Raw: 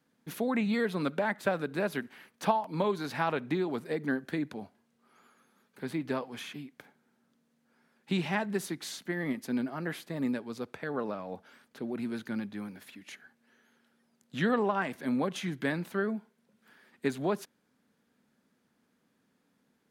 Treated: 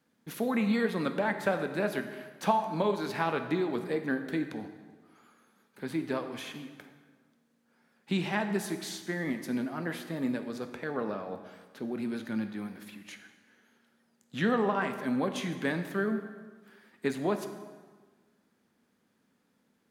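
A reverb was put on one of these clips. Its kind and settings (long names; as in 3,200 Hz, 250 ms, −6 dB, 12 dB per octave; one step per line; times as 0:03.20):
dense smooth reverb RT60 1.5 s, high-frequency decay 0.75×, DRR 7 dB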